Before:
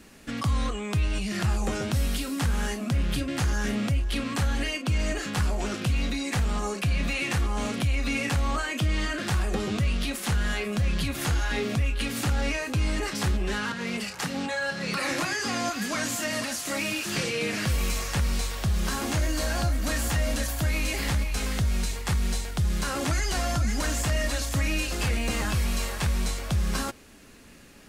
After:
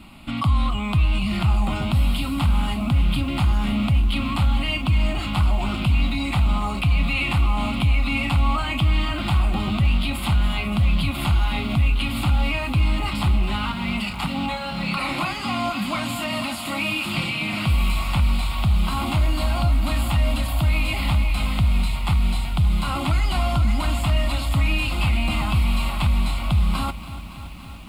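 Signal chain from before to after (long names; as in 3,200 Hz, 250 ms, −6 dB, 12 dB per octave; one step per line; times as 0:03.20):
high-shelf EQ 7,000 Hz −11 dB
in parallel at +2.5 dB: brickwall limiter −25.5 dBFS, peak gain reduction 8.5 dB
on the sum: phaser with its sweep stopped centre 1,700 Hz, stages 6
feedback echo at a low word length 284 ms, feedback 80%, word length 8 bits, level −15 dB
level +3 dB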